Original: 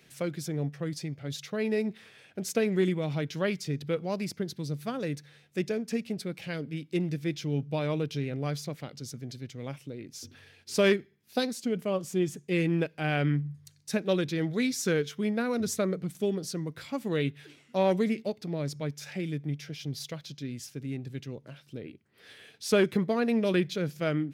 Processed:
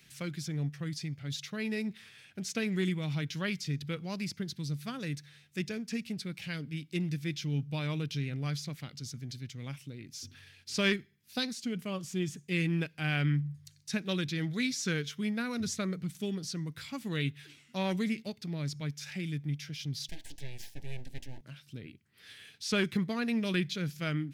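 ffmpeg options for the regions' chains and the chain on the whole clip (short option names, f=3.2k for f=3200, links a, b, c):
-filter_complex "[0:a]asettb=1/sr,asplit=3[a][b][c];[a]atrim=end=20.084[d];[b]atrim=start=20.08:end=21.41,asetpts=PTS-STARTPTS,afade=t=in:d=0.004:c=qsin,afade=t=out:st=1.326:d=0.004:c=qsin,bandreject=f=60:t=h:w=6,bandreject=f=120:t=h:w=6,bandreject=f=180:t=h:w=6,bandreject=f=240:t=h:w=6,bandreject=f=300:t=h:w=6,bandreject=f=360:t=h:w=6,bandreject=f=420:t=h:w=6,bandreject=f=480:t=h:w=6,bandreject=f=540:t=h:w=6,aeval=exprs='abs(val(0))':c=same,asuperstop=centerf=1200:order=20:qfactor=1.9[e];[c]atrim=start=21.406[f];[d][e]acrossfade=d=0.004:c1=hsin:c2=qsin[g];[g][f]acrossfade=d=0.004:c1=qsin:c2=hsin,acrossover=split=6600[h][i];[i]acompressor=threshold=-54dB:ratio=4:attack=1:release=60[j];[h][j]amix=inputs=2:normalize=0,equalizer=f=530:t=o:w=2.1:g=-14.5,volume=2.5dB"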